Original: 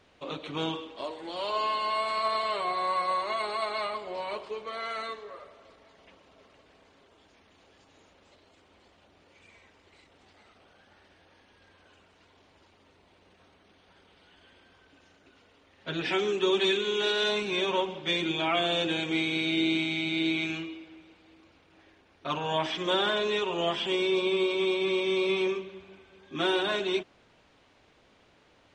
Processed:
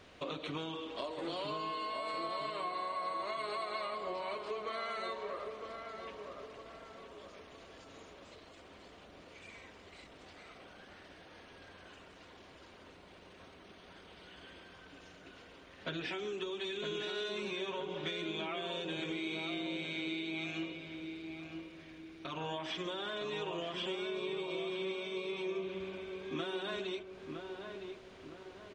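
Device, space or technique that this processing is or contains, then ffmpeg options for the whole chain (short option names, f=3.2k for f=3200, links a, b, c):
serial compression, leveller first: -filter_complex "[0:a]bandreject=f=850:w=12,acompressor=threshold=-30dB:ratio=6,acompressor=threshold=-42dB:ratio=6,asettb=1/sr,asplit=3[a][b][c];[a]atrim=end=20.724[d];[b]atrim=start=20.72:end=22.32,asetpts=PTS-STARTPTS,afade=t=in:d=0.004:c=qsin,afade=t=out:st=1.596:d=0.004:c=qsin,equalizer=f=620:w=0.52:g=-7.5[e];[c]atrim=start=22.316[f];[d][e]acrossfade=d=0.004:c1=hsin:c2=qsin[g];[g][f]acrossfade=d=0.004:c1=qsin:c2=hsin,asplit=2[h][i];[i]adelay=961,lowpass=f=1.5k:p=1,volume=-5dB,asplit=2[j][k];[k]adelay=961,lowpass=f=1.5k:p=1,volume=0.47,asplit=2[l][m];[m]adelay=961,lowpass=f=1.5k:p=1,volume=0.47,asplit=2[n][o];[o]adelay=961,lowpass=f=1.5k:p=1,volume=0.47,asplit=2[p][q];[q]adelay=961,lowpass=f=1.5k:p=1,volume=0.47,asplit=2[r][s];[s]adelay=961,lowpass=f=1.5k:p=1,volume=0.47[t];[h][j][l][n][p][r][t]amix=inputs=7:normalize=0,volume=4.5dB"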